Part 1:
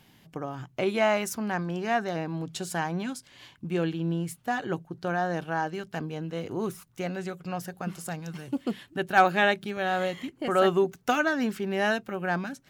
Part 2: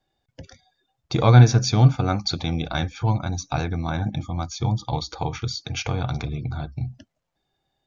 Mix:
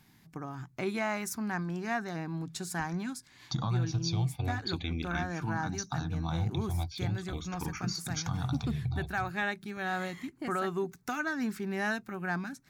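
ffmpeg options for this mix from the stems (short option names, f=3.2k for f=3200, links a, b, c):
-filter_complex "[0:a]equalizer=f=3k:w=4.2:g=-11,volume=-2dB[a];[1:a]acompressor=threshold=-18dB:ratio=6,asplit=2[b][c];[c]afreqshift=-0.42[d];[b][d]amix=inputs=2:normalize=1,adelay=2400,volume=-2.5dB[e];[a][e]amix=inputs=2:normalize=0,equalizer=f=540:w=1.8:g=-11.5,alimiter=limit=-21.5dB:level=0:latency=1:release=376"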